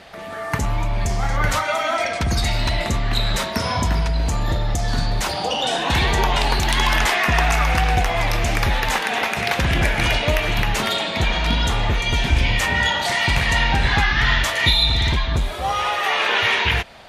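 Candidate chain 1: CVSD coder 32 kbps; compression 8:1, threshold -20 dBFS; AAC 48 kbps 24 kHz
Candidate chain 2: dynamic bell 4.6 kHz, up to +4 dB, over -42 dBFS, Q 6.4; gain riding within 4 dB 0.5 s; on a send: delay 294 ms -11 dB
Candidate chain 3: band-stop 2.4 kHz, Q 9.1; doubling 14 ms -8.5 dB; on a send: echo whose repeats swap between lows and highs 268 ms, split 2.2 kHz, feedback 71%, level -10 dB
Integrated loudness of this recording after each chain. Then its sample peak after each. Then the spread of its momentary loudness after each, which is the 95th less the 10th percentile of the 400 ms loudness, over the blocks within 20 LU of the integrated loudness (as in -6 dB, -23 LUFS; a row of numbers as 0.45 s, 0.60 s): -24.5 LUFS, -19.0 LUFS, -19.0 LUFS; -11.0 dBFS, -2.5 dBFS, -3.0 dBFS; 3 LU, 1 LU, 6 LU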